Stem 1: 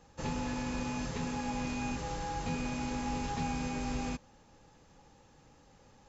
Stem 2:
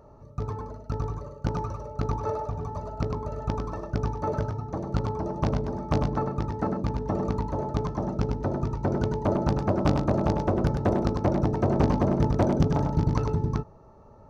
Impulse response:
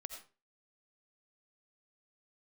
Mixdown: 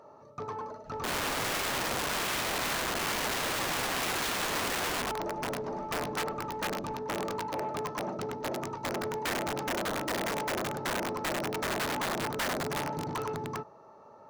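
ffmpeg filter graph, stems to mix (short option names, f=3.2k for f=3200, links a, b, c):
-filter_complex "[0:a]bass=f=250:g=11,treble=f=4k:g=-12,adelay=850,volume=1.5dB,asplit=3[a][b][c];[b]volume=-9.5dB[d];[c]volume=-9.5dB[e];[1:a]highpass=120,asoftclip=type=tanh:threshold=-21dB,asplit=2[f][g];[g]highpass=f=720:p=1,volume=13dB,asoftclip=type=tanh:threshold=-21dB[h];[f][h]amix=inputs=2:normalize=0,lowpass=f=5.2k:p=1,volume=-6dB,volume=-3.5dB[i];[2:a]atrim=start_sample=2205[j];[d][j]afir=irnorm=-1:irlink=0[k];[e]aecho=0:1:105|210|315|420:1|0.24|0.0576|0.0138[l];[a][i][k][l]amix=inputs=4:normalize=0,aeval=exprs='(mod(21.1*val(0)+1,2)-1)/21.1':c=same,lowshelf=f=170:g=-6.5"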